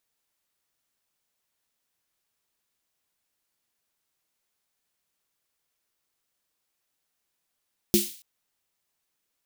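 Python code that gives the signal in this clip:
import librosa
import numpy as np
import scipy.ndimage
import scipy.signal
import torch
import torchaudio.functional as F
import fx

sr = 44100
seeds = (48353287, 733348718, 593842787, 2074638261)

y = fx.drum_snare(sr, seeds[0], length_s=0.28, hz=210.0, second_hz=350.0, noise_db=-4.5, noise_from_hz=2700.0, decay_s=0.21, noise_decay_s=0.48)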